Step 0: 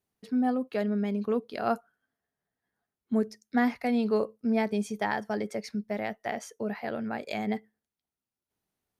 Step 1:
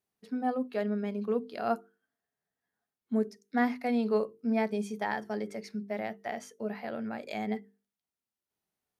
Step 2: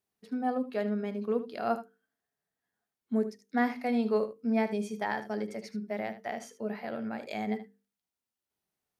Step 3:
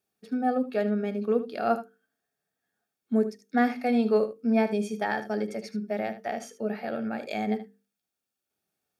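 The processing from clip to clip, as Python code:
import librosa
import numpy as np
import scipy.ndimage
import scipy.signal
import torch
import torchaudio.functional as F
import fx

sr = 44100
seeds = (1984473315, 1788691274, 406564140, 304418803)

y1 = fx.low_shelf(x, sr, hz=150.0, db=-6.5)
y1 = fx.hum_notches(y1, sr, base_hz=50, count=9)
y1 = fx.hpss(y1, sr, part='percussive', gain_db=-6)
y2 = y1 + 10.0 ** (-13.0 / 20.0) * np.pad(y1, (int(76 * sr / 1000.0), 0))[:len(y1)]
y3 = fx.notch_comb(y2, sr, f0_hz=1000.0)
y3 = F.gain(torch.from_numpy(y3), 5.0).numpy()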